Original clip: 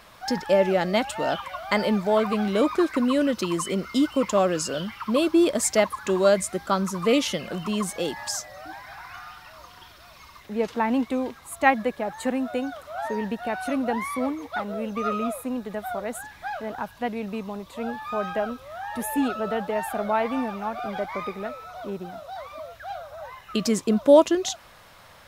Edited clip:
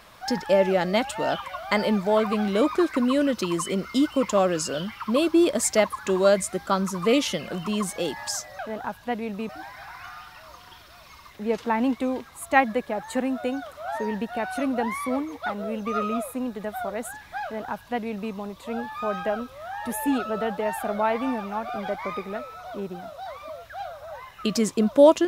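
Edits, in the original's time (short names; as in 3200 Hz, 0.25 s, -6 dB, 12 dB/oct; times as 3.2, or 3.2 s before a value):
16.53–17.43 copy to 8.59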